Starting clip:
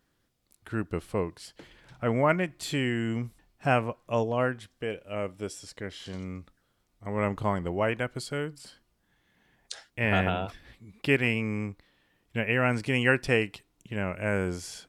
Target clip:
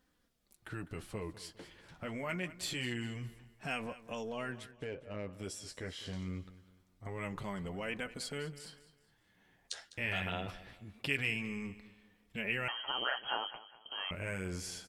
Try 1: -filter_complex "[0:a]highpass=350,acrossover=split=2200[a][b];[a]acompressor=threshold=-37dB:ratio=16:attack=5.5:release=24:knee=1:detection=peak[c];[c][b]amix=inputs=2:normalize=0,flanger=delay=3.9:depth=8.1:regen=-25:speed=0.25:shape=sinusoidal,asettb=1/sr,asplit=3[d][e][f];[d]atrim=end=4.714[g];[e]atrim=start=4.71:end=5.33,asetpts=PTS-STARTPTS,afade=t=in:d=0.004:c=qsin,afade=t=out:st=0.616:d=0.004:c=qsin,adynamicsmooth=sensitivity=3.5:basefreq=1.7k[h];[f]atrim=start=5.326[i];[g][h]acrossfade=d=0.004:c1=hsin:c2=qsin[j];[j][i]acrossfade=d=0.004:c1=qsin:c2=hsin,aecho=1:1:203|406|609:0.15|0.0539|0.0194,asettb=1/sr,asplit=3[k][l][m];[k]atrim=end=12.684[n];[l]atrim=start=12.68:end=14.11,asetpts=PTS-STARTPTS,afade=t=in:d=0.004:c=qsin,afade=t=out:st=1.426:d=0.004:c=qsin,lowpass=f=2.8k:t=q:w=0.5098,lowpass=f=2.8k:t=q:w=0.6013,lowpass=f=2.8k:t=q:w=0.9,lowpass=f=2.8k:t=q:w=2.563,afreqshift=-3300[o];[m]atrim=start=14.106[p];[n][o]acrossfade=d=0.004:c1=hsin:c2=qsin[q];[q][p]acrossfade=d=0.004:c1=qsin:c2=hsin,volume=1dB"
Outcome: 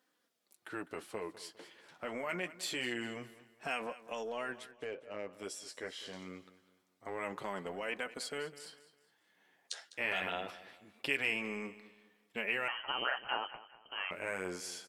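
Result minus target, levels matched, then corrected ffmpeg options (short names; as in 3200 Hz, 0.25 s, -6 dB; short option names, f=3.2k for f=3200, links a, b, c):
250 Hz band -3.5 dB
-filter_complex "[0:a]acrossover=split=2200[a][b];[a]acompressor=threshold=-37dB:ratio=16:attack=5.5:release=24:knee=1:detection=peak[c];[c][b]amix=inputs=2:normalize=0,flanger=delay=3.9:depth=8.1:regen=-25:speed=0.25:shape=sinusoidal,asettb=1/sr,asplit=3[d][e][f];[d]atrim=end=4.714[g];[e]atrim=start=4.71:end=5.33,asetpts=PTS-STARTPTS,afade=t=in:d=0.004:c=qsin,afade=t=out:st=0.616:d=0.004:c=qsin,adynamicsmooth=sensitivity=3.5:basefreq=1.7k[h];[f]atrim=start=5.326[i];[g][h]acrossfade=d=0.004:c1=hsin:c2=qsin[j];[j][i]acrossfade=d=0.004:c1=qsin:c2=hsin,aecho=1:1:203|406|609:0.15|0.0539|0.0194,asettb=1/sr,asplit=3[k][l][m];[k]atrim=end=12.684[n];[l]atrim=start=12.68:end=14.11,asetpts=PTS-STARTPTS,afade=t=in:d=0.004:c=qsin,afade=t=out:st=1.426:d=0.004:c=qsin,lowpass=f=2.8k:t=q:w=0.5098,lowpass=f=2.8k:t=q:w=0.6013,lowpass=f=2.8k:t=q:w=0.9,lowpass=f=2.8k:t=q:w=2.563,afreqshift=-3300[o];[m]atrim=start=14.106[p];[n][o]acrossfade=d=0.004:c1=hsin:c2=qsin[q];[q][p]acrossfade=d=0.004:c1=qsin:c2=hsin,volume=1dB"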